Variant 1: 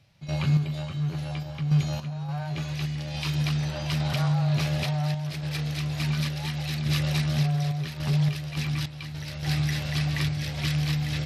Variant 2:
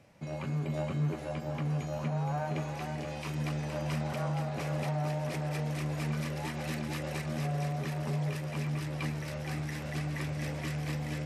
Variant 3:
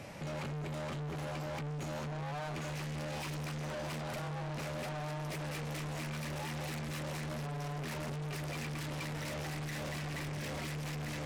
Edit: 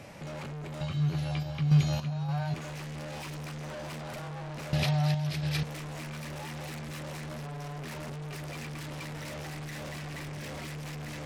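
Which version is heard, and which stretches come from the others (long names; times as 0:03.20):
3
0:00.81–0:02.54: punch in from 1
0:04.73–0:05.63: punch in from 1
not used: 2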